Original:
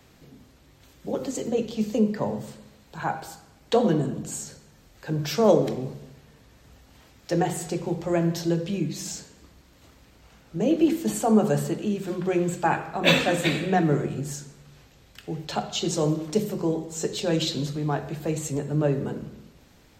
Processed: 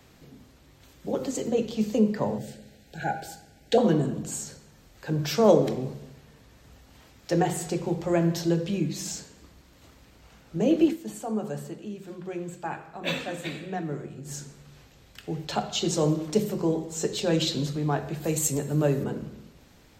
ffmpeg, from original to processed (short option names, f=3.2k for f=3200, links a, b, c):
-filter_complex "[0:a]asettb=1/sr,asplit=3[a][b][c];[a]atrim=end=2.384[d];[b]atrim=start=2.38:end=3.78,asetpts=PTS-STARTPTS,afade=t=in:d=0.004:c=qsin,afade=t=out:st=1.396:d=0.004:c=qsin,asuperstop=centerf=1100:order=20:qfactor=2[e];[c]atrim=start=3.776[f];[d][e]acrossfade=d=0.004:c1=hsin:c2=qsin[g];[g][f]acrossfade=d=0.004:c1=qsin:c2=hsin,asettb=1/sr,asplit=3[h][i][j];[h]atrim=end=18.244[k];[i]atrim=start=18.24:end=19.04,asetpts=PTS-STARTPTS,afade=t=in:d=0.004:c=qsin,afade=t=out:st=0.796:d=0.004:c=qsin,aemphasis=mode=production:type=50fm[l];[j]atrim=start=19.036[m];[k][l]acrossfade=d=0.004:c1=hsin:c2=qsin[n];[n][m]acrossfade=d=0.004:c1=qsin:c2=hsin,asplit=3[o][p][q];[o]atrim=end=10.97,asetpts=PTS-STARTPTS,afade=t=out:st=10.83:d=0.14:silence=0.298538[r];[p]atrim=start=10.97:end=14.24,asetpts=PTS-STARTPTS,volume=-10.5dB[s];[q]atrim=start=14.24,asetpts=PTS-STARTPTS,afade=t=in:d=0.14:silence=0.298538[t];[r][s][t]concat=n=3:v=0:a=1"